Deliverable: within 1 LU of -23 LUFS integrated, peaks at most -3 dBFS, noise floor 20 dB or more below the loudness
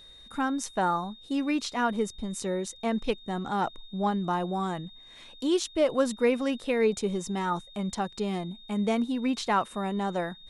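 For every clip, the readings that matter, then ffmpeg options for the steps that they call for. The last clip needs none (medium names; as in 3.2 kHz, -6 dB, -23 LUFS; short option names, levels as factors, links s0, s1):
steady tone 3.7 kHz; tone level -49 dBFS; loudness -29.5 LUFS; peak level -11.5 dBFS; loudness target -23.0 LUFS
-> -af "bandreject=f=3700:w=30"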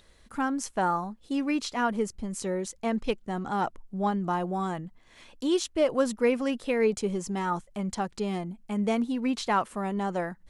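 steady tone not found; loudness -29.5 LUFS; peak level -11.5 dBFS; loudness target -23.0 LUFS
-> -af "volume=2.11"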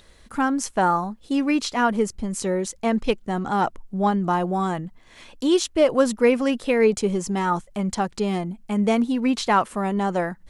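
loudness -23.0 LUFS; peak level -5.0 dBFS; noise floor -52 dBFS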